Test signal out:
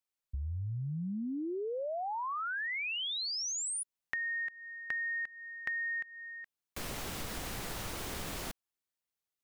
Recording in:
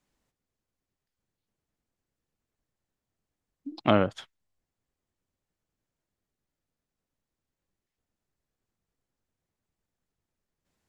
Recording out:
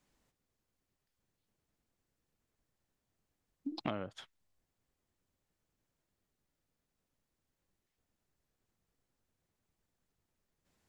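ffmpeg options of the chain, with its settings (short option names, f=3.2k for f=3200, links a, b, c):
-af "acompressor=threshold=-36dB:ratio=10,volume=1.5dB"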